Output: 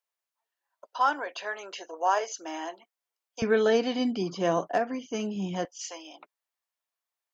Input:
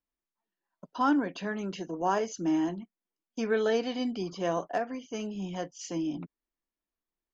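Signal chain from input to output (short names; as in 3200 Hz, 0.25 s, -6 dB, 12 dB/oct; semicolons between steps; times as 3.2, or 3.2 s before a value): HPF 530 Hz 24 dB/oct, from 3.42 s 76 Hz, from 5.65 s 610 Hz; gain +4 dB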